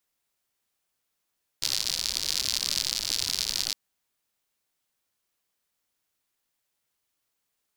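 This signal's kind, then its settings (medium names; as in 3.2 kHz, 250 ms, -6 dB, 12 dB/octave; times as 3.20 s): rain from filtered ticks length 2.11 s, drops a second 100, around 4.6 kHz, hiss -18 dB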